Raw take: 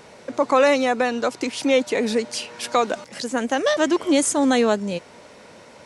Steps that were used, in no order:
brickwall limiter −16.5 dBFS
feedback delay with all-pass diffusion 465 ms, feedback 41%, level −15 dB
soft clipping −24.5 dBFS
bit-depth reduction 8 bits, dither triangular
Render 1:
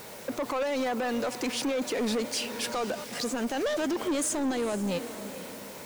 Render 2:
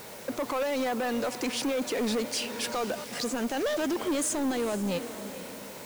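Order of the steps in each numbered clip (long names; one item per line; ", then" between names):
bit-depth reduction, then brickwall limiter, then feedback delay with all-pass diffusion, then soft clipping
brickwall limiter, then feedback delay with all-pass diffusion, then soft clipping, then bit-depth reduction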